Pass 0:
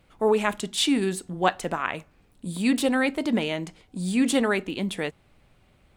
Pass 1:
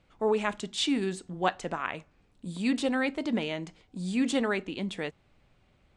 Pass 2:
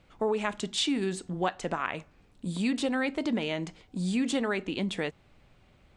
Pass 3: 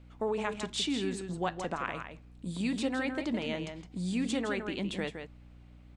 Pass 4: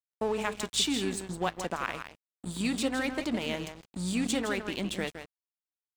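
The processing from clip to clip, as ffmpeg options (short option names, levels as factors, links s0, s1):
-af "lowpass=f=7800:w=0.5412,lowpass=f=7800:w=1.3066,volume=0.562"
-af "acompressor=threshold=0.0282:ratio=3,volume=1.68"
-filter_complex "[0:a]asplit=2[s0][s1];[s1]adelay=163.3,volume=0.447,highshelf=f=4000:g=-3.67[s2];[s0][s2]amix=inputs=2:normalize=0,aeval=exprs='val(0)+0.00398*(sin(2*PI*60*n/s)+sin(2*PI*2*60*n/s)/2+sin(2*PI*3*60*n/s)/3+sin(2*PI*4*60*n/s)/4+sin(2*PI*5*60*n/s)/5)':c=same,volume=0.631"
-af "crystalizer=i=1.5:c=0,aeval=exprs='sgn(val(0))*max(abs(val(0))-0.00631,0)':c=same,volume=1.41"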